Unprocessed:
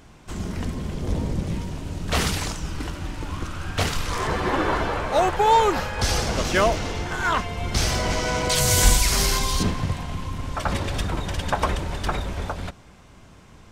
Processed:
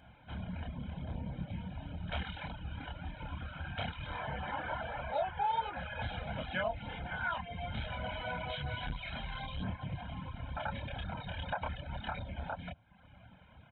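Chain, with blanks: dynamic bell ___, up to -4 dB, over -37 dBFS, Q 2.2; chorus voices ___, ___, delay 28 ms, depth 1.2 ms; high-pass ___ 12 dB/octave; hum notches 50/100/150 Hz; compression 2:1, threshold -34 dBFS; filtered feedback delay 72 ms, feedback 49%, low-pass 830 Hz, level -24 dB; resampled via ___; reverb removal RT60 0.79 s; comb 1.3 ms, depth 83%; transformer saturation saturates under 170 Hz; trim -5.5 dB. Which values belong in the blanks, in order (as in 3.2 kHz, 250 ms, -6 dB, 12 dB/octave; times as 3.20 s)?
350 Hz, 2, 1.8 Hz, 67 Hz, 8 kHz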